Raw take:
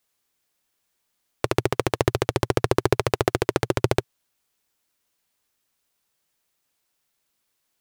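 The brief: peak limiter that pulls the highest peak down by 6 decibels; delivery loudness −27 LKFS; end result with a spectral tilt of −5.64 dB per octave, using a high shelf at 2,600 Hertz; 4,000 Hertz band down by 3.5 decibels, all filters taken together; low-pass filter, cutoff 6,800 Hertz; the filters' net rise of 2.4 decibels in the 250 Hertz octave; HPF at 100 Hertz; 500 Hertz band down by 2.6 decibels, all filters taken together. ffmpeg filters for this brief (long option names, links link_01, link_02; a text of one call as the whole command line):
ffmpeg -i in.wav -af "highpass=100,lowpass=6800,equalizer=frequency=250:width_type=o:gain=8,equalizer=frequency=500:width_type=o:gain=-7,highshelf=frequency=2600:gain=5,equalizer=frequency=4000:width_type=o:gain=-8.5,volume=2.5dB,alimiter=limit=-6dB:level=0:latency=1" out.wav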